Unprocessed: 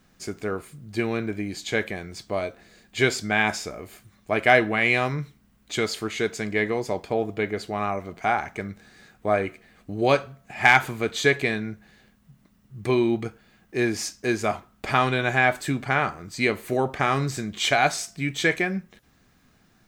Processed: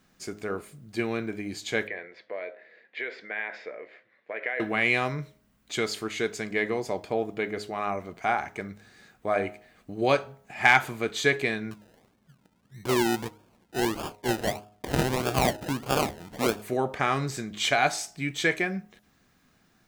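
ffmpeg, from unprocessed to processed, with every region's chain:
ffmpeg -i in.wav -filter_complex "[0:a]asettb=1/sr,asplit=3[link_01][link_02][link_03];[link_01]atrim=end=1.874[link_04];[link_02]atrim=start=1.87:end=4.6,asetpts=PTS-STARTPTS,afade=type=in:duration=0.004:curve=qsin,afade=type=out:start_time=2.726:duration=0.004:curve=qsin,acompressor=threshold=-27dB:ratio=5:attack=3.2:release=140:knee=1:detection=peak,highpass=490,equalizer=frequency=500:width_type=q:width=4:gain=9,equalizer=frequency=790:width_type=q:width=4:gain=-5,equalizer=frequency=1200:width_type=q:width=4:gain=-7,equalizer=frequency=1900:width_type=q:width=4:gain=10,equalizer=frequency=3000:width_type=q:width=4:gain=-5,lowpass=frequency=3100:width=0.5412,lowpass=frequency=3100:width=1.3066[link_05];[link_03]atrim=start=4.596[link_06];[link_04][link_05]acrossfade=duration=0.004:curve1=hsin:curve2=qsin[link_07];[link_07][link_06]acrossfade=duration=0.004:curve1=qsin:curve2=hsin,asettb=1/sr,asplit=3[link_08][link_09][link_10];[link_08]atrim=end=11.714[link_11];[link_09]atrim=start=11.71:end=16.62,asetpts=PTS-STARTPTS,afade=type=in:duration=0.004:curve=qsin,afade=type=out:start_time=4.906:duration=0.004:curve=qsin,highpass=62,acrusher=samples=31:mix=1:aa=0.000001:lfo=1:lforange=18.6:lforate=1.6[link_12];[link_10]atrim=start=16.616[link_13];[link_11][link_12]acrossfade=duration=0.004:curve1=hsin:curve2=qsin[link_14];[link_14][link_13]acrossfade=duration=0.004:curve1=qsin:curve2=hsin,lowshelf=frequency=110:gain=-6,bandreject=frequency=104:width_type=h:width=4,bandreject=frequency=208:width_type=h:width=4,bandreject=frequency=312:width_type=h:width=4,bandreject=frequency=416:width_type=h:width=4,bandreject=frequency=520:width_type=h:width=4,bandreject=frequency=624:width_type=h:width=4,bandreject=frequency=728:width_type=h:width=4,bandreject=frequency=832:width_type=h:width=4,bandreject=frequency=936:width_type=h:width=4,volume=-2.5dB" out.wav

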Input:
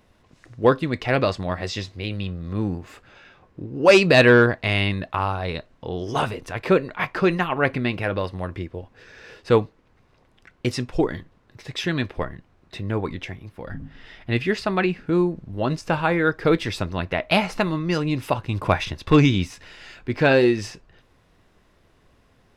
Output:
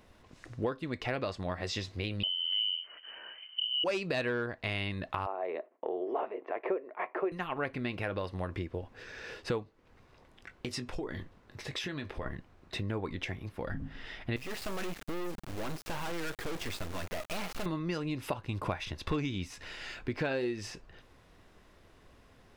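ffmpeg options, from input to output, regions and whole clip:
ffmpeg -i in.wav -filter_complex "[0:a]asettb=1/sr,asplit=3[link_01][link_02][link_03];[link_01]atrim=end=2.234[link_04];[link_02]atrim=start=2.23:end=3.84,asetpts=PTS-STARTPTS,afade=type=in:duration=0.004:curve=qsin,afade=type=out:start_time=1.606:duration=0.004:curve=qsin,highpass=120,lowshelf=frequency=340:width_type=q:width=3:gain=9.5,lowpass=frequency=2700:width_type=q:width=0.5098,lowpass=frequency=2700:width_type=q:width=0.6013,lowpass=frequency=2700:width_type=q:width=0.9,lowpass=frequency=2700:width_type=q:width=2.563,afreqshift=-3200[link_05];[link_03]atrim=start=3.836[link_06];[link_04][link_05]acrossfade=duration=0.004:curve1=hsin:curve2=qsin[link_07];[link_07][link_06]acrossfade=duration=0.004:curve1=qsin:curve2=hsin,asettb=1/sr,asplit=3[link_08][link_09][link_10];[link_08]atrim=end=5.264[link_11];[link_09]atrim=start=5.26:end=7.32,asetpts=PTS-STARTPTS,afade=type=in:duration=0.004:curve=qsin,afade=type=out:start_time=2.056:duration=0.004:curve=qsin,agate=range=-33dB:threshold=-50dB:ratio=3:release=100:detection=peak,highpass=frequency=320:width=0.5412,highpass=frequency=320:width=1.3066,equalizer=frequency=380:width_type=q:width=4:gain=6,equalizer=frequency=660:width_type=q:width=4:gain=7,equalizer=frequency=1500:width_type=q:width=4:gain=-9,lowpass=frequency=2000:width=0.5412,lowpass=frequency=2000:width=1.3066[link_12];[link_10]atrim=start=7.316[link_13];[link_11][link_12]acrossfade=duration=0.004:curve1=hsin:curve2=qsin[link_14];[link_14][link_13]acrossfade=duration=0.004:curve1=qsin:curve2=hsin,asettb=1/sr,asplit=3[link_15][link_16][link_17];[link_15]atrim=end=9.634[link_18];[link_16]atrim=start=9.63:end=12.26,asetpts=PTS-STARTPTS,afade=type=in:duration=0.004:curve=qsin,afade=type=out:start_time=2.626:duration=0.004:curve=qsin,acompressor=threshold=-33dB:ratio=5:attack=3.2:release=140:knee=1:detection=peak,asplit=2[link_19][link_20];[link_20]adelay=21,volume=-11dB[link_21];[link_19][link_21]amix=inputs=2:normalize=0,atrim=end_sample=115983[link_22];[link_17]atrim=start=12.256[link_23];[link_18][link_22]acrossfade=duration=0.004:curve1=hsin:curve2=qsin[link_24];[link_24][link_23]acrossfade=duration=0.004:curve1=qsin:curve2=hsin,asettb=1/sr,asplit=3[link_25][link_26][link_27];[link_25]atrim=end=14.364[link_28];[link_26]atrim=start=14.36:end=17.66,asetpts=PTS-STARTPTS,afade=type=in:duration=0.004:curve=qsin,afade=type=out:start_time=3.296:duration=0.004:curve=qsin,lowpass=4400,volume=25.5dB,asoftclip=hard,volume=-25.5dB,acrusher=bits=4:dc=4:mix=0:aa=0.000001[link_29];[link_27]atrim=start=17.656[link_30];[link_28][link_29]acrossfade=duration=0.004:curve1=hsin:curve2=qsin[link_31];[link_31][link_30]acrossfade=duration=0.004:curve1=qsin:curve2=hsin,equalizer=frequency=140:width=1.3:gain=-3,acompressor=threshold=-32dB:ratio=5" out.wav

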